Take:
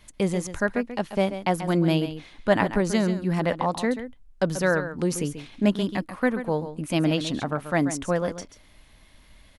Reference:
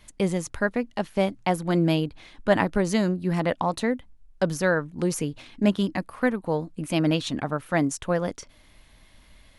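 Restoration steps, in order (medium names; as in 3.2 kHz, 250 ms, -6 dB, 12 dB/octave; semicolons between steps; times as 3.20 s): inverse comb 136 ms -11 dB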